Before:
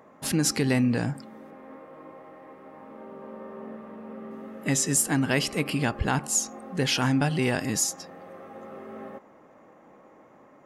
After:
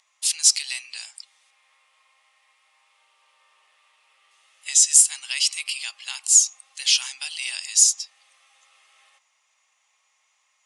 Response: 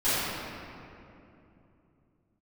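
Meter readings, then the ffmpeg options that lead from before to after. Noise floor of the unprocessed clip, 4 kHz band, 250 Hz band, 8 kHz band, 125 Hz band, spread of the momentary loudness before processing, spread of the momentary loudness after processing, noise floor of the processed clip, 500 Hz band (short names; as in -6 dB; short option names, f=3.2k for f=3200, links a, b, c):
-54 dBFS, +9.0 dB, under -40 dB, +11.0 dB, under -40 dB, 20 LU, 17 LU, -69 dBFS, under -30 dB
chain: -af "highpass=f=1k:w=0.5412,highpass=f=1k:w=1.3066,aexciter=amount=9.7:drive=7.5:freq=2.4k,aresample=22050,aresample=44100,volume=-13dB"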